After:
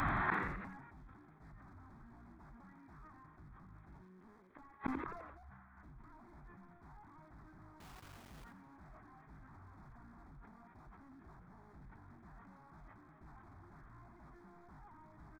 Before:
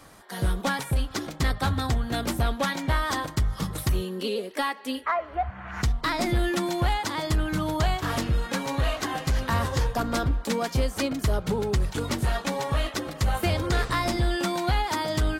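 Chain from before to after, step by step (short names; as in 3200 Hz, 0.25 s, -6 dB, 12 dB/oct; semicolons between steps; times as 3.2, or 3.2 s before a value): delta modulation 16 kbps, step -43 dBFS; 6.4–6.85 bell 370 Hz -14 dB 0.57 oct; in parallel at -2.5 dB: level quantiser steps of 12 dB; on the sum: wavefolder -24.5 dBFS; fixed phaser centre 1200 Hz, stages 4; flipped gate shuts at -34 dBFS, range -41 dB; 7.8–8.44 requantised 12-bit, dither none; on a send: frequency-shifting echo 86 ms, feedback 57%, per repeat +61 Hz, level -17 dB; on the sum: sustainer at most 42 dB/s; gain +15 dB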